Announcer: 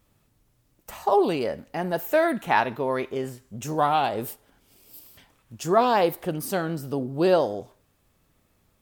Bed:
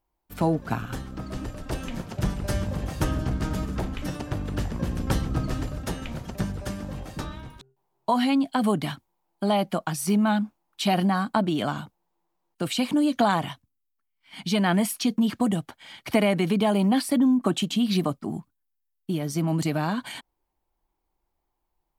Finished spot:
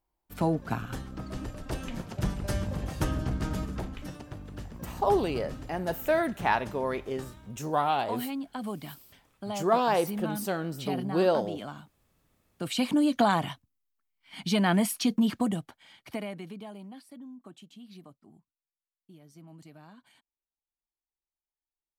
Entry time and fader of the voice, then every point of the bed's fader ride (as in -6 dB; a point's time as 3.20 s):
3.95 s, -4.5 dB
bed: 3.58 s -3.5 dB
4.38 s -12.5 dB
12.35 s -12.5 dB
12.82 s -2 dB
15.29 s -2 dB
17.00 s -25.5 dB